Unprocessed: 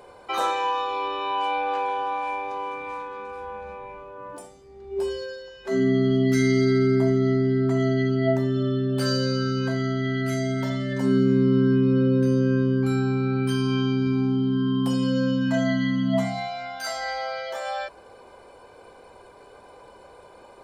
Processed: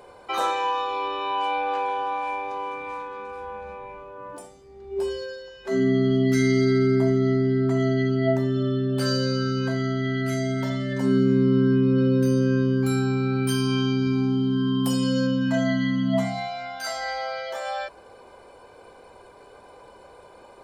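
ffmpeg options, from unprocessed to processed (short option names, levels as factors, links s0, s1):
-filter_complex "[0:a]asettb=1/sr,asplit=3[s0][s1][s2];[s0]atrim=end=11.984[s3];[s1]atrim=start=11.98:end=15.27,asetpts=PTS-STARTPTS,afade=t=in:d=0.004:c=qsin,afade=t=out:st=3.286:d=0.004:c=qsin,aemphasis=mode=production:type=50kf[s4];[s2]atrim=start=15.266[s5];[s3][s4]acrossfade=d=0.004:c1=hsin:c2=qsin[s6];[s6][s5]acrossfade=d=0.004:c1=qsin:c2=hsin"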